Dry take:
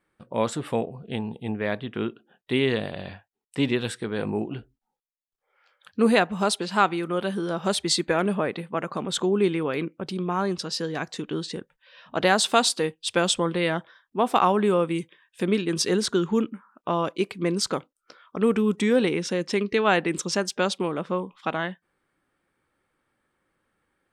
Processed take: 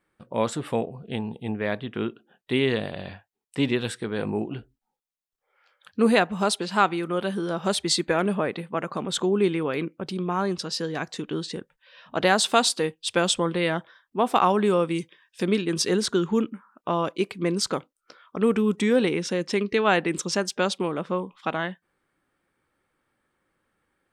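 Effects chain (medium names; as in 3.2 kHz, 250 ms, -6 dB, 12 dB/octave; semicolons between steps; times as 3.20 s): 14.50–15.57 s: peaking EQ 5.3 kHz +9.5 dB 0.6 oct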